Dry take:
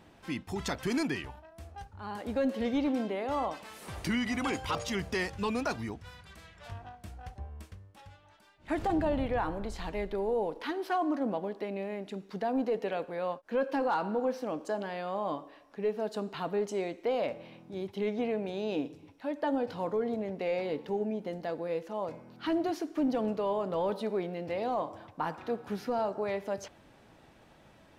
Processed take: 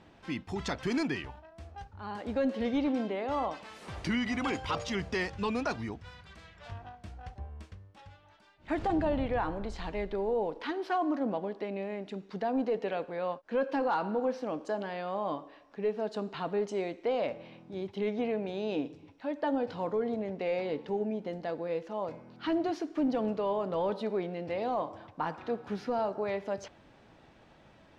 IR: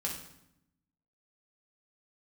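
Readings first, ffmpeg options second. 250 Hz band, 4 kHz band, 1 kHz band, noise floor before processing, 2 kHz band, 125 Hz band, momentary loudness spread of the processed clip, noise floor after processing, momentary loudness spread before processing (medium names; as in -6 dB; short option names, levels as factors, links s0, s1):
0.0 dB, -0.5 dB, 0.0 dB, -59 dBFS, 0.0 dB, 0.0 dB, 15 LU, -59 dBFS, 15 LU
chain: -af "lowpass=5900"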